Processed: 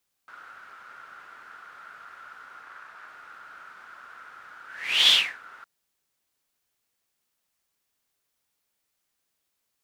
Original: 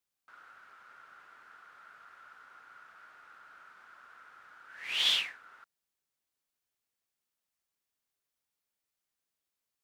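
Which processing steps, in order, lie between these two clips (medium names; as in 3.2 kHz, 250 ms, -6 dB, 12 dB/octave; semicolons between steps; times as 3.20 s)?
2.63–3.08 s: loudspeaker Doppler distortion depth 0.3 ms; trim +9 dB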